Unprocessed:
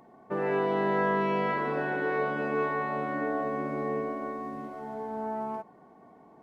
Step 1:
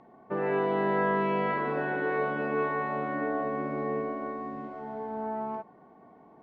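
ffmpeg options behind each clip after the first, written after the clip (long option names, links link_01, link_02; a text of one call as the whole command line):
ffmpeg -i in.wav -af "lowpass=3500" out.wav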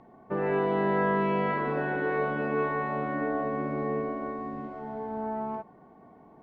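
ffmpeg -i in.wav -af "lowshelf=frequency=120:gain=10" out.wav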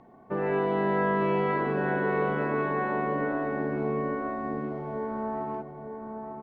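ffmpeg -i in.wav -filter_complex "[0:a]asplit=2[link_01][link_02];[link_02]adelay=901,lowpass=frequency=1500:poles=1,volume=-5.5dB,asplit=2[link_03][link_04];[link_04]adelay=901,lowpass=frequency=1500:poles=1,volume=0.42,asplit=2[link_05][link_06];[link_06]adelay=901,lowpass=frequency=1500:poles=1,volume=0.42,asplit=2[link_07][link_08];[link_08]adelay=901,lowpass=frequency=1500:poles=1,volume=0.42,asplit=2[link_09][link_10];[link_10]adelay=901,lowpass=frequency=1500:poles=1,volume=0.42[link_11];[link_01][link_03][link_05][link_07][link_09][link_11]amix=inputs=6:normalize=0" out.wav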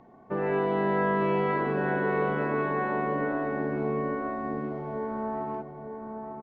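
ffmpeg -i in.wav -af "aresample=16000,aresample=44100" out.wav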